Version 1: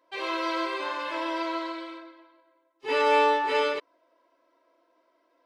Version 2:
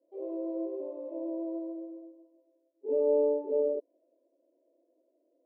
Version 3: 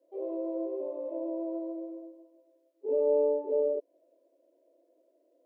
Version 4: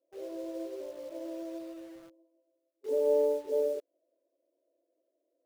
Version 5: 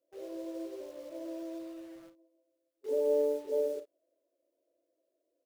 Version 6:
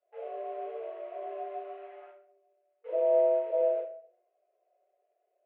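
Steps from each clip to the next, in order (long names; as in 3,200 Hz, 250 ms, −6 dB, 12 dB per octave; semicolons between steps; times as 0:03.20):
elliptic band-pass filter 240–600 Hz, stop band 50 dB
bass and treble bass −14 dB, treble −3 dB; in parallel at 0 dB: downward compressor, threshold −40 dBFS, peak gain reduction 15 dB
in parallel at −5 dB: bit reduction 7 bits; on the sum: expander for the loud parts 1.5 to 1, over −34 dBFS; level −4 dB
ambience of single reflections 37 ms −11 dB, 54 ms −14.5 dB; level −1.5 dB
convolution reverb, pre-delay 5 ms, DRR −5.5 dB; single-sideband voice off tune +65 Hz 430–2,600 Hz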